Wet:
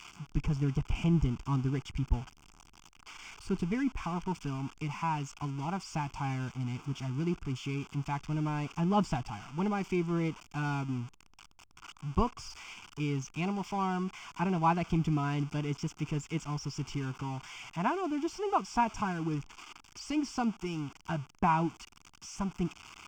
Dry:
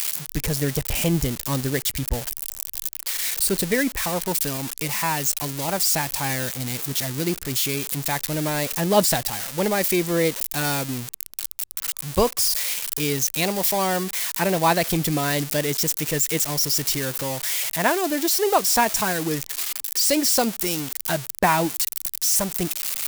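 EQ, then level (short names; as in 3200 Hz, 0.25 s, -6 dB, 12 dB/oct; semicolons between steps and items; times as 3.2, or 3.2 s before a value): tape spacing loss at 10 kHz 22 dB; high shelf 3200 Hz -8 dB; fixed phaser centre 2700 Hz, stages 8; -2.5 dB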